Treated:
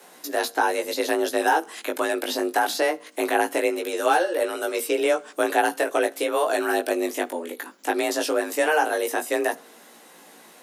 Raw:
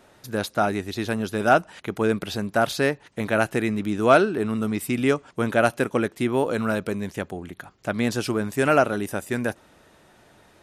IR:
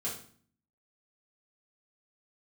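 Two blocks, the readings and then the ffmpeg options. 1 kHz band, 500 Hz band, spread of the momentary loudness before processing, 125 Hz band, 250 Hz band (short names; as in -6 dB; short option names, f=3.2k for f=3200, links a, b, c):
+2.0 dB, +0.5 dB, 11 LU, under -30 dB, -5.5 dB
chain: -filter_complex "[0:a]aemphasis=mode=production:type=50fm,afreqshift=160,asplit=2[a][b];[b]alimiter=limit=-12dB:level=0:latency=1,volume=1dB[c];[a][c]amix=inputs=2:normalize=0,acrossover=split=610|1400|6500[d][e][f][g];[d]acompressor=threshold=-22dB:ratio=4[h];[e]acompressor=threshold=-19dB:ratio=4[i];[f]acompressor=threshold=-27dB:ratio=4[j];[g]acompressor=threshold=-35dB:ratio=4[k];[h][i][j][k]amix=inputs=4:normalize=0,flanger=delay=17:depth=2.3:speed=0.21,asplit=2[l][m];[1:a]atrim=start_sample=2205[n];[m][n]afir=irnorm=-1:irlink=0,volume=-20dB[o];[l][o]amix=inputs=2:normalize=0"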